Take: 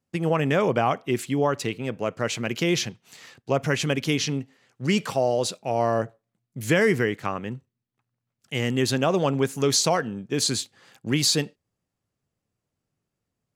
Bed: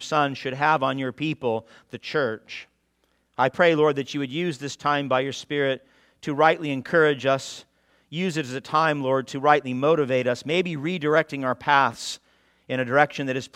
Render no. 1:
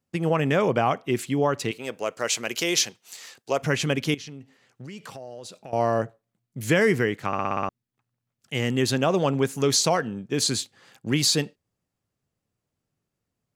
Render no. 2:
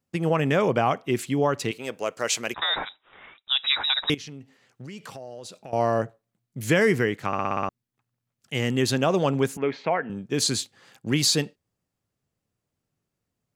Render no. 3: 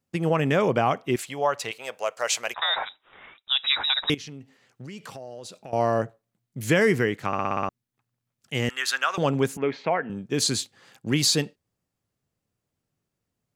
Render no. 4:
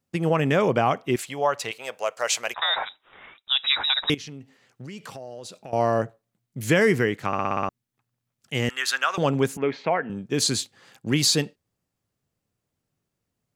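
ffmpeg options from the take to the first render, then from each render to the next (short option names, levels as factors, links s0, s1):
-filter_complex "[0:a]asettb=1/sr,asplit=3[s0][s1][s2];[s0]atrim=end=1.714[s3];[s1]atrim=start=1.71:end=3.62,asetpts=PTS-STARTPTS,afade=t=in:d=0.004:c=qsin,afade=t=out:st=1.906:d=0.004:c=qsin,bass=f=250:g=-15,treble=f=4000:g=9[s4];[s2]atrim=start=3.616[s5];[s3][s4]acrossfade=d=0.004:c1=hsin:c2=qsin[s6];[s6][s5]acrossfade=d=0.004:c1=qsin:c2=hsin,asettb=1/sr,asplit=3[s7][s8][s9];[s7]atrim=end=4.144[s10];[s8]atrim=start=4.14:end=5.73,asetpts=PTS-STARTPTS,afade=t=in:d=0.004:c=qsin,afade=t=out:st=1.586:d=0.004:c=qsin,acompressor=threshold=0.0141:ratio=6:attack=3.2:release=140:knee=1:detection=peak[s11];[s9]atrim=start=5.726[s12];[s10][s11]acrossfade=d=0.004:c1=hsin:c2=qsin[s13];[s13][s12]acrossfade=d=0.004:c1=qsin:c2=hsin,asplit=8[s14][s15][s16][s17][s18][s19][s20][s21];[s14]atrim=end=7.332[s22];[s15]atrim=start=7.268:end=7.332[s23];[s16]atrim=start=7.268:end=7.332[s24];[s17]atrim=start=7.268:end=7.332[s25];[s18]atrim=start=7.268:end=7.332[s26];[s19]atrim=start=7.268:end=7.332[s27];[s20]atrim=start=7.268:end=7.332[s28];[s21]atrim=start=7.688[s29];[s22][s23]acrossfade=d=0.004:c1=hsin:c2=hsin[s30];[s30][s24]acrossfade=d=0.004:c1=hsin:c2=hsin[s31];[s31][s25]acrossfade=d=0.004:c1=hsin:c2=hsin[s32];[s32][s26]acrossfade=d=0.004:c1=hsin:c2=hsin[s33];[s33][s27]acrossfade=d=0.004:c1=hsin:c2=hsin[s34];[s34][s28]acrossfade=d=0.004:c1=hsin:c2=hsin[s35];[s35][s29]acrossfade=d=0.004:c1=hsin:c2=hsin"
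-filter_complex "[0:a]asettb=1/sr,asplit=3[s0][s1][s2];[s0]atrim=end=2.544[s3];[s1]atrim=start=2.54:end=4.1,asetpts=PTS-STARTPTS,afade=t=in:d=0.004:c=qsin,afade=t=out:st=1.556:d=0.004:c=qsin,lowpass=f=3400:t=q:w=0.5098,lowpass=f=3400:t=q:w=0.6013,lowpass=f=3400:t=q:w=0.9,lowpass=f=3400:t=q:w=2.563,afreqshift=-4000[s4];[s2]atrim=start=4.096[s5];[s3][s4]acrossfade=d=0.004:c1=hsin:c2=qsin[s6];[s6][s5]acrossfade=d=0.004:c1=qsin:c2=hsin,asettb=1/sr,asplit=3[s7][s8][s9];[s7]atrim=end=9.574[s10];[s8]atrim=start=9.57:end=10.1,asetpts=PTS-STARTPTS,afade=t=in:d=0.004:c=qsin,afade=t=out:st=0.526:d=0.004:c=qsin,highpass=250,equalizer=f=340:t=q:w=4:g=-4,equalizer=f=510:t=q:w=4:g=-3,equalizer=f=1200:t=q:w=4:g=-5,equalizer=f=2200:t=q:w=4:g=6,lowpass=f=2300:w=0.5412,lowpass=f=2300:w=1.3066[s11];[s9]atrim=start=10.096[s12];[s10][s11]acrossfade=d=0.004:c1=hsin:c2=qsin[s13];[s13][s12]acrossfade=d=0.004:c1=qsin:c2=hsin"
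-filter_complex "[0:a]asettb=1/sr,asplit=3[s0][s1][s2];[s0]atrim=end=1.164[s3];[s1]atrim=start=1.16:end=2.85,asetpts=PTS-STARTPTS,afade=t=in:d=0.004:c=qsin,afade=t=out:st=1.686:d=0.004:c=qsin,lowshelf=f=440:t=q:w=1.5:g=-12[s4];[s2]atrim=start=2.846[s5];[s3][s4]acrossfade=d=0.004:c1=hsin:c2=qsin[s6];[s6][s5]acrossfade=d=0.004:c1=qsin:c2=hsin,asettb=1/sr,asplit=3[s7][s8][s9];[s7]atrim=end=8.694[s10];[s8]atrim=start=8.69:end=9.18,asetpts=PTS-STARTPTS,afade=t=in:d=0.004:c=qsin,afade=t=out:st=0.486:d=0.004:c=qsin,highpass=f=1400:t=q:w=3[s11];[s9]atrim=start=9.176[s12];[s10][s11]acrossfade=d=0.004:c1=hsin:c2=qsin[s13];[s13][s12]acrossfade=d=0.004:c1=qsin:c2=hsin"
-af "volume=1.12"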